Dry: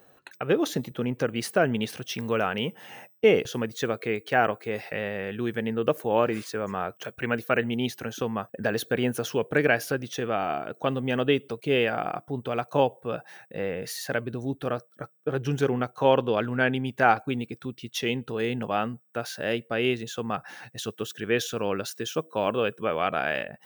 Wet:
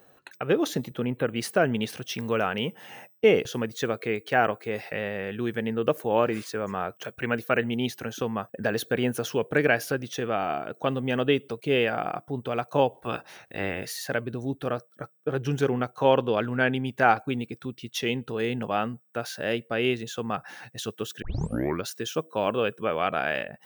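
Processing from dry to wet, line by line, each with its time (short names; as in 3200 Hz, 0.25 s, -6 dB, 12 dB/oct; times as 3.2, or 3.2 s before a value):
1.01–1.36 spectral gain 4100–10000 Hz -30 dB
12.93–13.84 spectral limiter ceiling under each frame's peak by 16 dB
21.22 tape start 0.62 s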